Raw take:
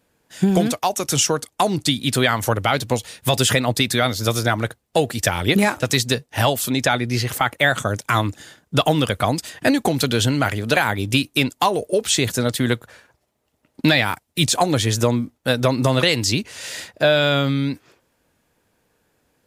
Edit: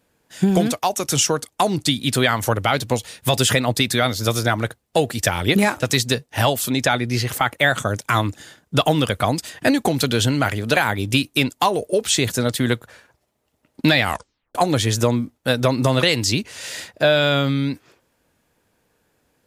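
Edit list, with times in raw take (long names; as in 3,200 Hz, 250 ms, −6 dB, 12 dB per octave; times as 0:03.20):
0:14.02: tape stop 0.53 s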